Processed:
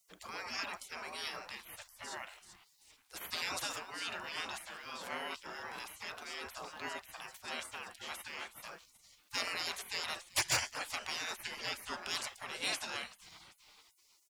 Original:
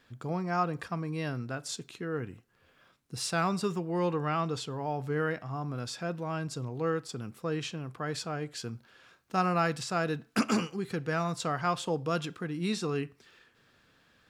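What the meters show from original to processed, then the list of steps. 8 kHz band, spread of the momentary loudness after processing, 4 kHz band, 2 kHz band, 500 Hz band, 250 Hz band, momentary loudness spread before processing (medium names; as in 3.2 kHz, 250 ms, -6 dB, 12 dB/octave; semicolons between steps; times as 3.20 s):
+0.5 dB, 12 LU, +2.0 dB, -1.5 dB, -16.0 dB, -22.0 dB, 8 LU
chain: frequency-shifting echo 386 ms, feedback 48%, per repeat +120 Hz, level -21 dB; spectral gate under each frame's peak -25 dB weak; hard clipper -34 dBFS, distortion -18 dB; trim +10 dB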